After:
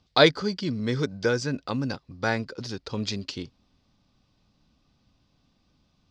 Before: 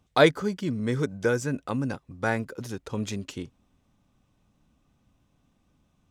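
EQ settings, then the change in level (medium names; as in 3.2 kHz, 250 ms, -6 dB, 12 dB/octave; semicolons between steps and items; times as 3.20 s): resonant low-pass 4.7 kHz, resonance Q 5.4; 0.0 dB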